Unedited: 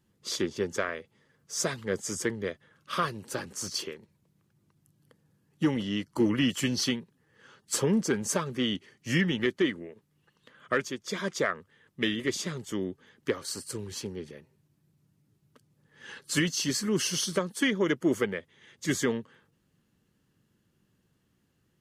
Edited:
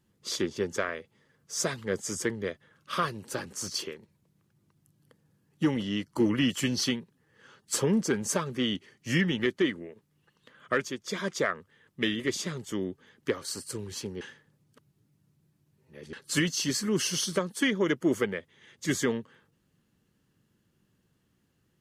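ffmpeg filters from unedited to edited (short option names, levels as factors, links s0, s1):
-filter_complex "[0:a]asplit=3[s0][s1][s2];[s0]atrim=end=14.212[s3];[s1]atrim=start=14.208:end=16.132,asetpts=PTS-STARTPTS,areverse[s4];[s2]atrim=start=16.128[s5];[s3][s4]acrossfade=d=0.004:c1=hsin:c2=hsin[s6];[s6][s5]acrossfade=d=0.004:c1=hsin:c2=hsin"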